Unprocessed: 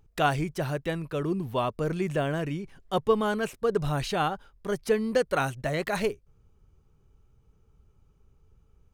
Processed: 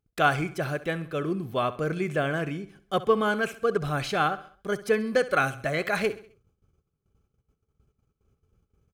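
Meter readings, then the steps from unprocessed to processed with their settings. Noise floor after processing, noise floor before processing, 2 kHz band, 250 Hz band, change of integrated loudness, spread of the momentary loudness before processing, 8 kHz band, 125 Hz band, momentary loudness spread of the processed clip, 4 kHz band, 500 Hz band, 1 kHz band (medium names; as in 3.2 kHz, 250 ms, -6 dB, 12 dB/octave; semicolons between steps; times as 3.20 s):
-81 dBFS, -63 dBFS, +5.5 dB, -0.5 dB, +1.5 dB, 6 LU, -0.5 dB, -1.0 dB, 7 LU, +1.0 dB, +1.0 dB, +2.0 dB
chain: gate -58 dBFS, range -16 dB; dynamic bell 1.8 kHz, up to +7 dB, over -42 dBFS, Q 0.85; comb of notches 930 Hz; on a send: feedback delay 66 ms, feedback 45%, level -16 dB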